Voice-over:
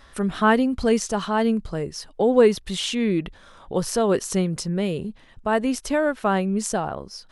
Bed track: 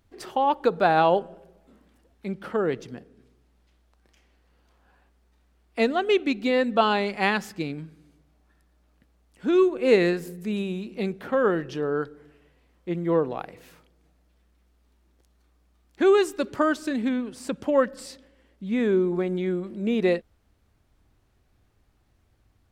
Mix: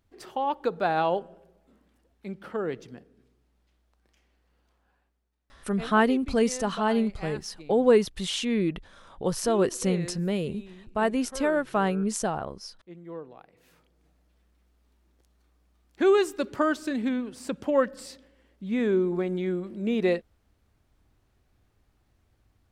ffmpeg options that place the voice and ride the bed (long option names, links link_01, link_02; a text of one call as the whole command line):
ffmpeg -i stem1.wav -i stem2.wav -filter_complex "[0:a]adelay=5500,volume=-3.5dB[link_01];[1:a]volume=9.5dB,afade=type=out:start_time=4.59:duration=0.73:silence=0.266073,afade=type=in:start_time=13.52:duration=0.55:silence=0.177828[link_02];[link_01][link_02]amix=inputs=2:normalize=0" out.wav